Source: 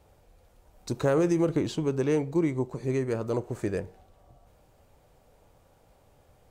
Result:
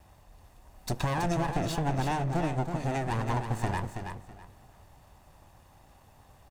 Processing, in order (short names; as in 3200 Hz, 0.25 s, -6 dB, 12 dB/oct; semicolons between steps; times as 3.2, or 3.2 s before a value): minimum comb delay 1.1 ms; compressor, threshold -30 dBFS, peak gain reduction 8 dB; feedback echo 0.326 s, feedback 23%, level -7 dB; gain +4.5 dB